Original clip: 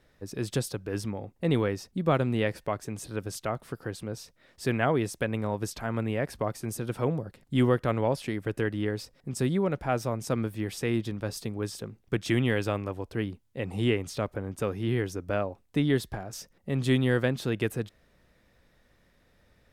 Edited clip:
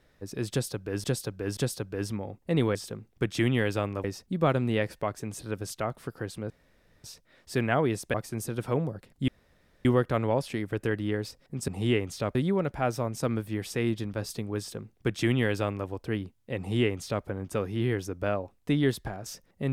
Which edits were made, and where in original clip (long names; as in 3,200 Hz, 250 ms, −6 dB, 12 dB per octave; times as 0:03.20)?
0:00.51–0:01.04: repeat, 3 plays
0:04.15: splice in room tone 0.54 s
0:05.25–0:06.45: remove
0:07.59: splice in room tone 0.57 s
0:11.66–0:12.95: duplicate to 0:01.69
0:13.65–0:14.32: duplicate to 0:09.42